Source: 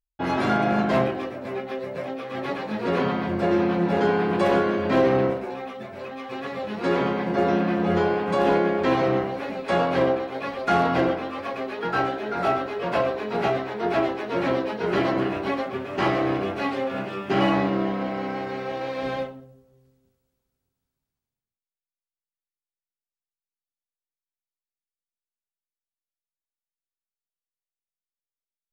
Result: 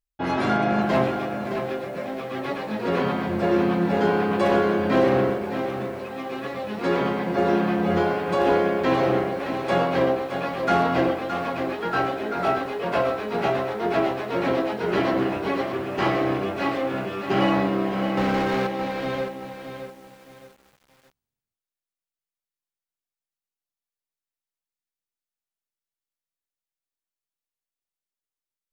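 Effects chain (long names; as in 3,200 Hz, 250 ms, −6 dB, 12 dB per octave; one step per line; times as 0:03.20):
0:18.17–0:18.67: leveller curve on the samples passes 3
feedback echo at a low word length 617 ms, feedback 35%, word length 8 bits, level −8.5 dB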